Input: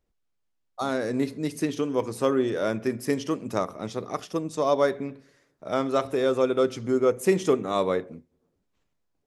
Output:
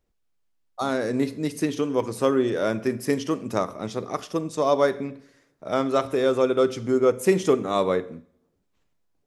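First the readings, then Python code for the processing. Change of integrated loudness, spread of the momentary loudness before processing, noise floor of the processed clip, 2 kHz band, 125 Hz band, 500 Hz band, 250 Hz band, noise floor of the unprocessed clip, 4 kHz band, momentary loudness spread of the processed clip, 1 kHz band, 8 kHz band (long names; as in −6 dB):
+2.0 dB, 9 LU, −71 dBFS, +2.0 dB, +2.0 dB, +2.0 dB, +2.0 dB, −75 dBFS, +2.0 dB, 9 LU, +2.0 dB, +2.0 dB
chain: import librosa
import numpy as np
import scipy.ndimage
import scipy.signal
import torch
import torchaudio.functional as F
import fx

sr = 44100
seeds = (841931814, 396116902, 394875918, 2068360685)

y = fx.rev_schroeder(x, sr, rt60_s=0.61, comb_ms=33, drr_db=18.0)
y = y * librosa.db_to_amplitude(2.0)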